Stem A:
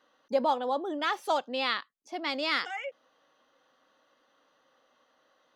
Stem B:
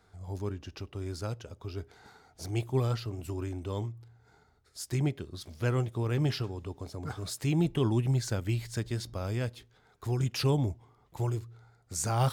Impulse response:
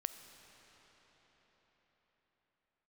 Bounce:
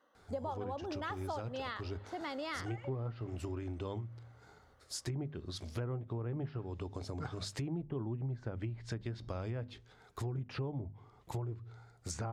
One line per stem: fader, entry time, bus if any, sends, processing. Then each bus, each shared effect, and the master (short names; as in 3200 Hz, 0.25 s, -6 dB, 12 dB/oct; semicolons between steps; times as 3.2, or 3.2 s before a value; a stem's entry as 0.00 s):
-5.0 dB, 0.00 s, send -7.5 dB, bell 4100 Hz -9 dB 1.5 oct; notch 2400 Hz, Q 6.6
+2.5 dB, 0.15 s, no send, notches 50/100/150/200/250 Hz; treble ducked by the level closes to 1200 Hz, closed at -27 dBFS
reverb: on, pre-delay 5 ms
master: compressor 5:1, threshold -37 dBFS, peak gain reduction 15 dB